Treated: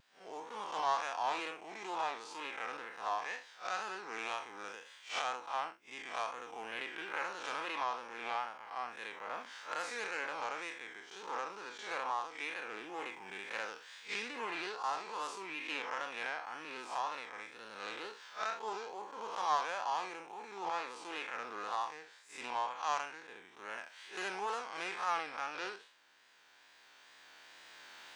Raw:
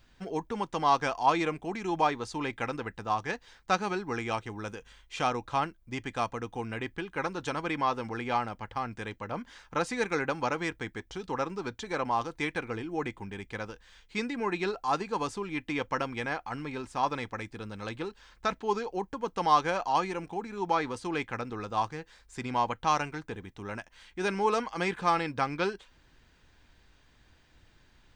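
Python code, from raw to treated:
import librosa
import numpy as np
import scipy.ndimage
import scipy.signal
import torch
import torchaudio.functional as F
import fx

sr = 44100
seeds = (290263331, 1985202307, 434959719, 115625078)

y = fx.spec_blur(x, sr, span_ms=121.0)
y = fx.recorder_agc(y, sr, target_db=-21.5, rise_db_per_s=7.1, max_gain_db=30)
y = scipy.signal.sosfilt(scipy.signal.butter(2, 710.0, 'highpass', fs=sr, output='sos'), y)
y = fx.wow_flutter(y, sr, seeds[0], rate_hz=2.1, depth_cents=69.0)
y = fx.doppler_dist(y, sr, depth_ms=0.12)
y = y * librosa.db_to_amplitude(-3.0)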